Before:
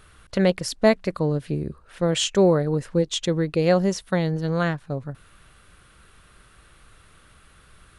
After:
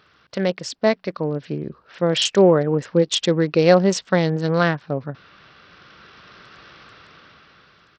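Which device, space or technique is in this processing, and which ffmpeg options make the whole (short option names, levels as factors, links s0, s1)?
Bluetooth headset: -af "highpass=140,equalizer=f=66:w=0.38:g=-3,dynaudnorm=f=620:g=5:m=6.68,aresample=16000,aresample=44100,volume=0.891" -ar 44100 -c:a sbc -b:a 64k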